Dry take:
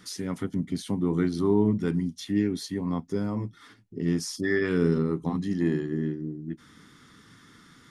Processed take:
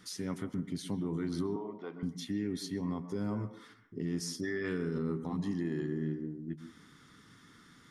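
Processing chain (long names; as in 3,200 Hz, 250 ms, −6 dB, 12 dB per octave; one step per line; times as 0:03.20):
brickwall limiter −21 dBFS, peak gain reduction 10 dB
0:01.56–0:02.03: loudspeaker in its box 480–3,700 Hz, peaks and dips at 500 Hz +5 dB, 720 Hz +8 dB, 1,100 Hz +7 dB, 1,700 Hz −6 dB, 2,700 Hz −5 dB
on a send: convolution reverb RT60 0.45 s, pre-delay 118 ms, DRR 10 dB
on the sum: level −5 dB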